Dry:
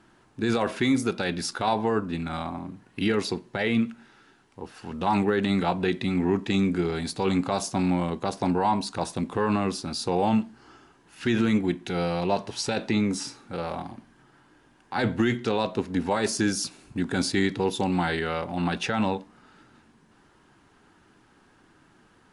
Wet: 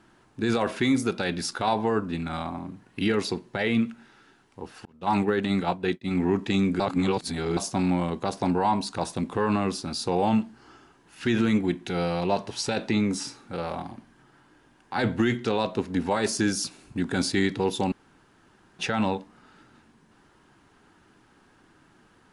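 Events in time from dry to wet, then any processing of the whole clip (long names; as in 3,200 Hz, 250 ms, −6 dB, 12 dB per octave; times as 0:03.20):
0:04.85–0:06.11: downward expander −23 dBFS
0:06.80–0:07.57: reverse
0:17.92–0:18.79: fill with room tone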